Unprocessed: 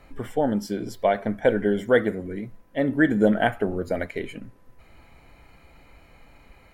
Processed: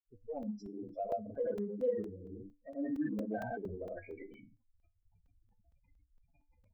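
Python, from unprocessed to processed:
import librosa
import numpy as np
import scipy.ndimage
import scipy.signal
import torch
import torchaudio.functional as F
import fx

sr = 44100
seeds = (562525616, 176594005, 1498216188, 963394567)

y = fx.granulator(x, sr, seeds[0], grain_ms=256.0, per_s=27.0, spray_ms=100.0, spread_st=0)
y = fx.spec_gate(y, sr, threshold_db=-10, keep='strong')
y = fx.cheby_harmonics(y, sr, harmonics=(8,), levels_db=(-45,), full_scale_db=-17.0)
y = fx.comb_fb(y, sr, f0_hz=97.0, decay_s=0.25, harmonics='odd', damping=0.0, mix_pct=70)
y = fx.buffer_crackle(y, sr, first_s=0.43, period_s=0.23, block=128, kind='zero')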